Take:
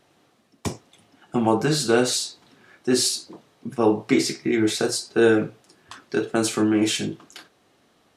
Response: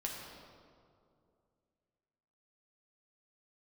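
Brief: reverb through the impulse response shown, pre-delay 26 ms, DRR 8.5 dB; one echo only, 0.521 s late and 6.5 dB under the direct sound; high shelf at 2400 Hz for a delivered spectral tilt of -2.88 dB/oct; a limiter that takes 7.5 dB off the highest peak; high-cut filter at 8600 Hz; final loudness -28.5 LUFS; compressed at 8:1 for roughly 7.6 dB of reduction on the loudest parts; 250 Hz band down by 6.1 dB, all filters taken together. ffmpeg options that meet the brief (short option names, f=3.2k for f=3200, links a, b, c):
-filter_complex "[0:a]lowpass=8.6k,equalizer=f=250:t=o:g=-9,highshelf=f=2.4k:g=4.5,acompressor=threshold=-23dB:ratio=8,alimiter=limit=-18.5dB:level=0:latency=1,aecho=1:1:521:0.473,asplit=2[a][b];[1:a]atrim=start_sample=2205,adelay=26[c];[b][c]afir=irnorm=-1:irlink=0,volume=-9.5dB[d];[a][d]amix=inputs=2:normalize=0,volume=1dB"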